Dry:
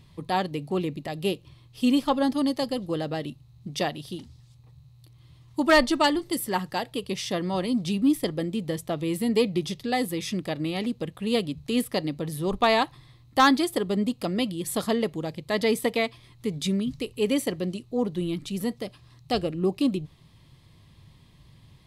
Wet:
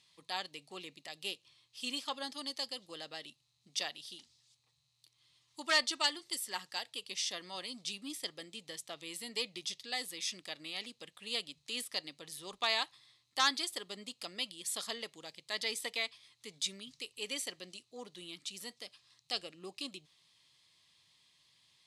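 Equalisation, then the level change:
resonant band-pass 6,500 Hz, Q 0.71
low-pass filter 9,600 Hz 12 dB per octave
0.0 dB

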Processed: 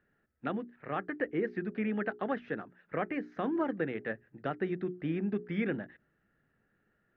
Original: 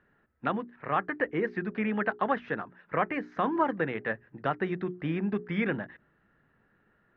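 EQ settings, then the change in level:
parametric band 1,000 Hz −8.5 dB 0.45 octaves
dynamic equaliser 310 Hz, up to +5 dB, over −43 dBFS, Q 0.88
−6.0 dB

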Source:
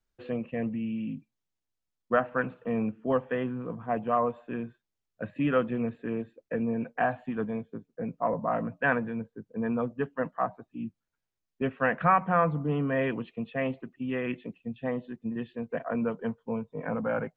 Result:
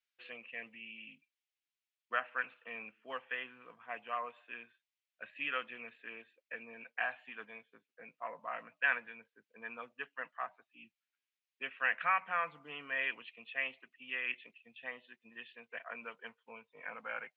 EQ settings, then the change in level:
resonant band-pass 2,500 Hz, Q 2
spectral tilt +2 dB per octave
+2.0 dB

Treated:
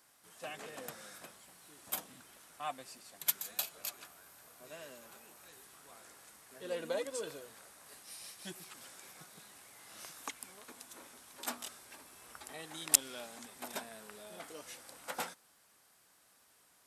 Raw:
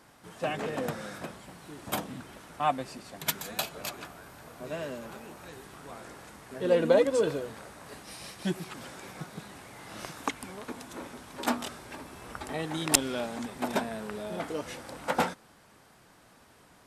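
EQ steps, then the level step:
first-order pre-emphasis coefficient 0.97
tilt shelving filter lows +5.5 dB, about 1,400 Hz
notch filter 900 Hz, Q 29
+3.0 dB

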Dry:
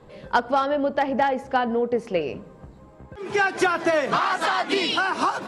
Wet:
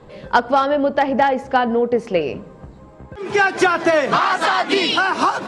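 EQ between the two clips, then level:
low-pass filter 9,400 Hz 12 dB per octave
+5.5 dB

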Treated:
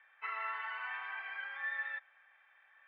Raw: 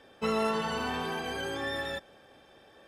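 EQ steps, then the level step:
high-pass filter 1,000 Hz 24 dB per octave
transistor ladder low-pass 2,300 Hz, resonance 65%
high-frequency loss of the air 160 metres
+4.0 dB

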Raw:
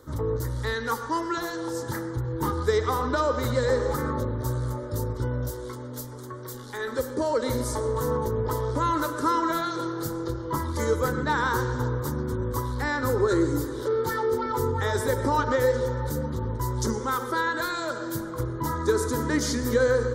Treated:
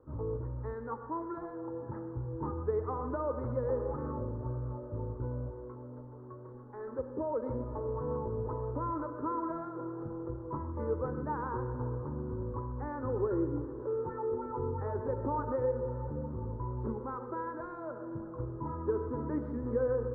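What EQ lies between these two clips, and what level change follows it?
low-pass filter 1,100 Hz 24 dB per octave
−8.5 dB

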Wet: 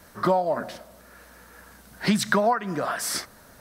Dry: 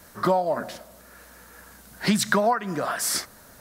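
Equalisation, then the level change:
high-shelf EQ 5,900 Hz −5 dB
notch filter 7,000 Hz, Q 21
0.0 dB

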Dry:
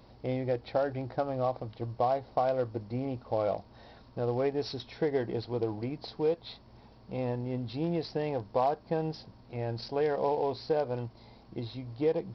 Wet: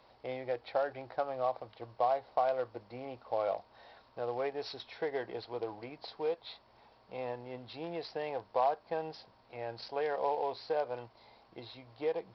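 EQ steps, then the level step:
three-way crossover with the lows and the highs turned down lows −17 dB, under 490 Hz, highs −14 dB, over 4,800 Hz
0.0 dB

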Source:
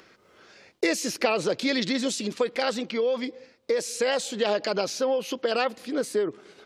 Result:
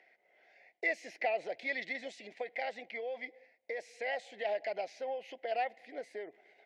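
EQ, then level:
pair of resonant band-passes 1,200 Hz, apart 1.5 octaves
−1.0 dB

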